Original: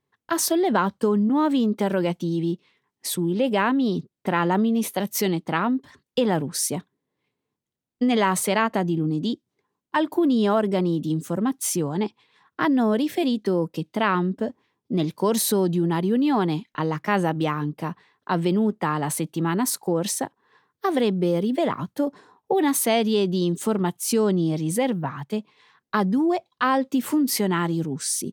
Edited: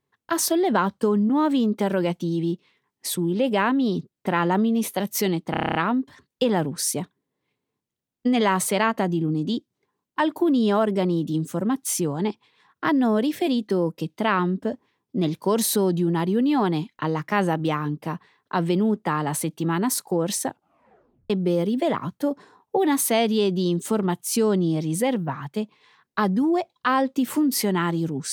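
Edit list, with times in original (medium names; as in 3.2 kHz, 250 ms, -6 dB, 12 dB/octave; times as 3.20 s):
5.51 s: stutter 0.03 s, 9 plays
20.22 s: tape stop 0.84 s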